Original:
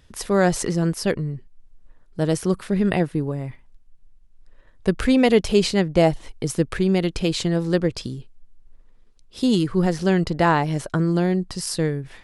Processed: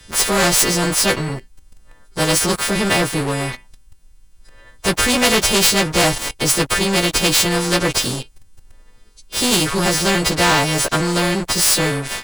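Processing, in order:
every partial snapped to a pitch grid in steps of 2 semitones
leveller curve on the samples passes 2
every bin compressed towards the loudest bin 2 to 1

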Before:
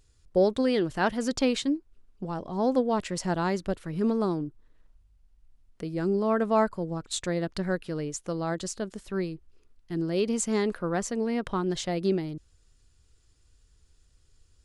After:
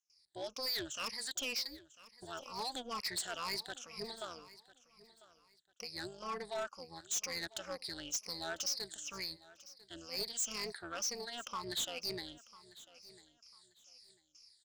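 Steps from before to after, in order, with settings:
rippled gain that drifts along the octave scale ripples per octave 0.87, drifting −2.1 Hz, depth 23 dB
noise gate with hold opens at −49 dBFS
automatic gain control gain up to 10 dB
resonant band-pass 5,300 Hz, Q 2.3
amplitude modulation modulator 250 Hz, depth 60%
soft clipping −36 dBFS, distortion −2 dB
repeating echo 997 ms, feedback 25%, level −19 dB
level +3.5 dB

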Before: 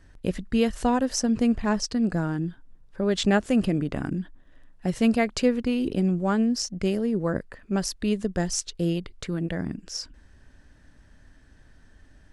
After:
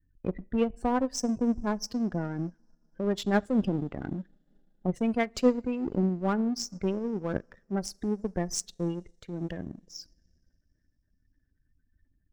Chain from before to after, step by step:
gate on every frequency bin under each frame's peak −20 dB strong
coupled-rooms reverb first 0.5 s, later 4 s, from −18 dB, DRR 18.5 dB
power curve on the samples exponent 1.4
amplitude modulation by smooth noise, depth 60%
level +2 dB

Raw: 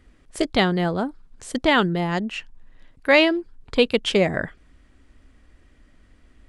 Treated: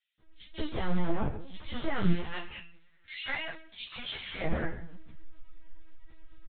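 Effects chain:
one scale factor per block 3 bits
0:01.93–0:04.25: high-pass filter 1,400 Hz 12 dB per octave
dynamic equaliser 2,600 Hz, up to −5 dB, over −42 dBFS, Q 7.9
automatic gain control gain up to 10 dB
brickwall limiter −11.5 dBFS, peak gain reduction 10 dB
amplitude modulation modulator 99 Hz, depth 20%
phase shifter 0.44 Hz, delay 1.3 ms, feedback 24%
double-tracking delay 18 ms −5 dB
multiband delay without the direct sound highs, lows 190 ms, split 2,700 Hz
rectangular room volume 170 cubic metres, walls mixed, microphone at 0.5 metres
linear-prediction vocoder at 8 kHz pitch kept
string-ensemble chorus
level −8 dB

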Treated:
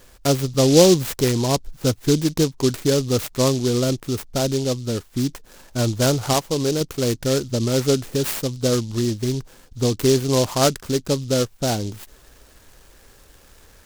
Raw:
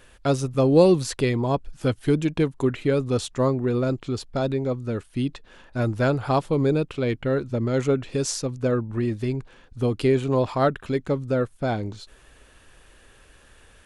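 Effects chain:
0:06.33–0:06.81: low-shelf EQ 350 Hz −6.5 dB
short delay modulated by noise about 4,800 Hz, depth 0.11 ms
level +3 dB

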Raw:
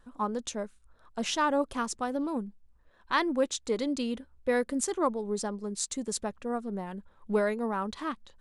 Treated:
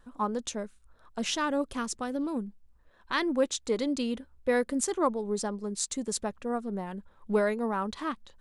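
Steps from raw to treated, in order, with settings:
0:00.52–0:03.23: dynamic equaliser 860 Hz, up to −7 dB, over −40 dBFS, Q 1.1
level +1 dB

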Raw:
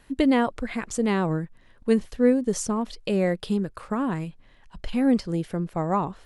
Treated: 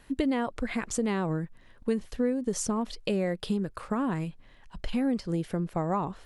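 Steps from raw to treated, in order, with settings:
downward compressor 4 to 1, threshold −25 dBFS, peak gain reduction 9.5 dB

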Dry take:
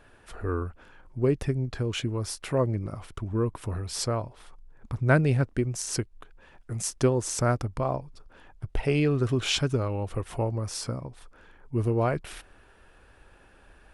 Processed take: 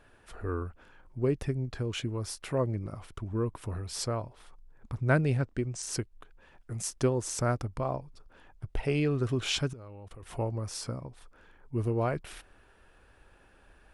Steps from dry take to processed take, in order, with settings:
0:05.38–0:05.83: elliptic low-pass filter 8,700 Hz
0:09.73–0:10.23: output level in coarse steps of 21 dB
level −4 dB

